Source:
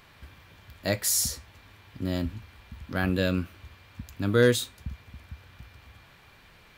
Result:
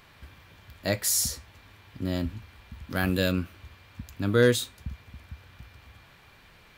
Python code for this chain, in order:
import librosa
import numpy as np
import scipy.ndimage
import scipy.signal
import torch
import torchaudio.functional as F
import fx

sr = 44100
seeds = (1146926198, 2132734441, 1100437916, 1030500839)

y = fx.high_shelf(x, sr, hz=5500.0, db=10.5, at=(2.9, 3.32))